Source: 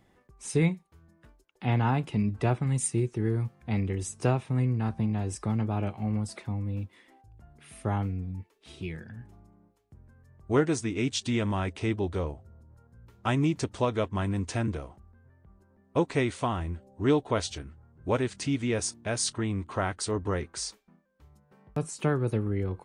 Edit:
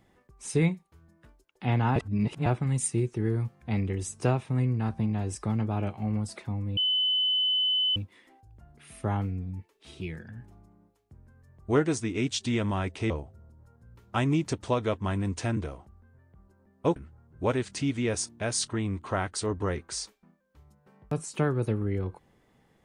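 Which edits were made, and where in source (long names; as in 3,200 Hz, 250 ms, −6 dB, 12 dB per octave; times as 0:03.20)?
0:01.96–0:02.46: reverse
0:06.77: insert tone 3,020 Hz −22.5 dBFS 1.19 s
0:11.91–0:12.21: remove
0:16.07–0:17.61: remove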